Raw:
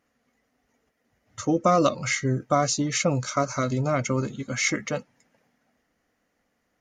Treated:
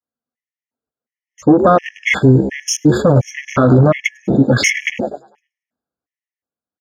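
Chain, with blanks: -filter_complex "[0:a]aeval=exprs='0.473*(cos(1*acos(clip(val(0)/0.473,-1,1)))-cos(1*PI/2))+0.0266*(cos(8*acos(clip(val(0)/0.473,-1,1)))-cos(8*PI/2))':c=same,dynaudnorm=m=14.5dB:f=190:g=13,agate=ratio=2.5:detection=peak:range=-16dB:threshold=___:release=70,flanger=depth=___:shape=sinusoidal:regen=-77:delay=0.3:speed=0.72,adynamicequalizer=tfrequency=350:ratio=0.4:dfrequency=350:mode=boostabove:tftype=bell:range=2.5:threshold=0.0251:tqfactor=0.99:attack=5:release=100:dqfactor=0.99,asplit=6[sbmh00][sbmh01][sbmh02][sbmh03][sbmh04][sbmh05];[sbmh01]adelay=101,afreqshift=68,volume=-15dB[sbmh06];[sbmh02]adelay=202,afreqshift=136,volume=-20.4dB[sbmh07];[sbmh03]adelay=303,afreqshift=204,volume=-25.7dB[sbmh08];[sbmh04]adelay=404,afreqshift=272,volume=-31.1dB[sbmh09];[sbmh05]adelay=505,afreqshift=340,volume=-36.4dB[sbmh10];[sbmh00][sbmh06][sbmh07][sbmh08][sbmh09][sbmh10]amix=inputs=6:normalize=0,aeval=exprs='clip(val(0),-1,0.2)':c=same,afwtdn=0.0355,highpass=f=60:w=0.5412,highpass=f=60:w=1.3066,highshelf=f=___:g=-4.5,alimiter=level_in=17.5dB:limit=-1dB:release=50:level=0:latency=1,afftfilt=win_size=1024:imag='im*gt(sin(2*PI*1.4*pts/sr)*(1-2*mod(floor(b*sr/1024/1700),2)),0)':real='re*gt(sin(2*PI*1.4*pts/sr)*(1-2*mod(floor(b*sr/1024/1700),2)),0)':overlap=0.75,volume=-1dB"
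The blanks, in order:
-50dB, 2.8, 5100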